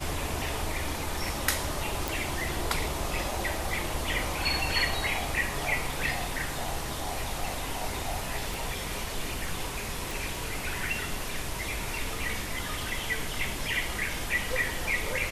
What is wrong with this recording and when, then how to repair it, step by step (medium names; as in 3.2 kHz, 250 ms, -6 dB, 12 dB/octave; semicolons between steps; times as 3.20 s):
2.08 s: pop
8.54 s: pop
10.11 s: pop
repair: de-click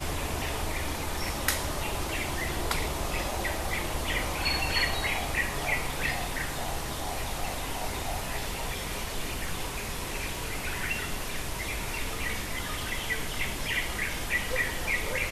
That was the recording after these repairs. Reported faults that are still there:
8.54 s: pop